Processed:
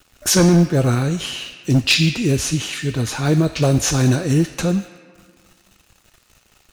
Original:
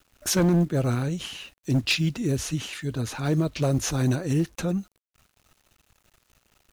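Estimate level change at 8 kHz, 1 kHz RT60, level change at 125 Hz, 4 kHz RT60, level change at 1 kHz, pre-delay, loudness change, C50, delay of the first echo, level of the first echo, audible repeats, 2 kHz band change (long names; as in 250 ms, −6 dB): +10.0 dB, 1.9 s, +7.5 dB, 1.0 s, +8.0 dB, 3 ms, +8.0 dB, 9.5 dB, no echo audible, no echo audible, no echo audible, +9.0 dB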